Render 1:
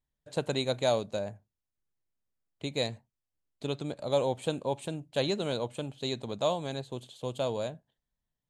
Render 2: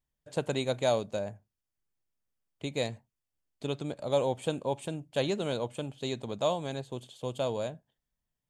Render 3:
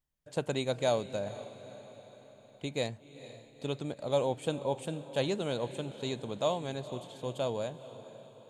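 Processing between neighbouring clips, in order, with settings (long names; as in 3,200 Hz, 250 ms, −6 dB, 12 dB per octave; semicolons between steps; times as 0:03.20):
notch filter 4,000 Hz, Q 11
feedback delay with all-pass diffusion 475 ms, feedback 51%, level −14.5 dB; level −1.5 dB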